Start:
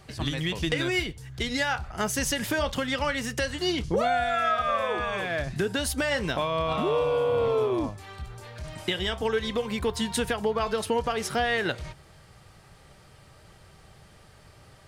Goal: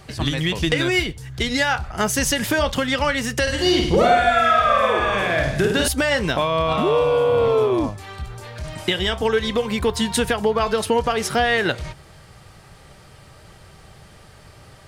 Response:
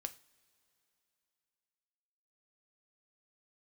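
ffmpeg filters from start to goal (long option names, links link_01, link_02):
-filter_complex "[0:a]asettb=1/sr,asplit=3[link_01][link_02][link_03];[link_01]atrim=end=3.424[link_04];[link_02]atrim=start=3.42:end=5.88,asetpts=PTS-STARTPTS,afade=type=in:duration=0.004:curve=qsin,afade=type=out:start_time=2.456:duration=0.004:curve=qsin,aecho=1:1:50|105|165.5|232|305.3:0.631|0.398|0.251|0.158|0.1,atrim=end_sample=108486[link_05];[link_03]atrim=start=5.876[link_06];[link_04][link_05]acrossfade=duration=0.004:curve1=hsin:curve2=qsin[link_07];[link_07][link_06]acrossfade=duration=0.004:curve1=qsin:curve2=hsin,volume=7dB"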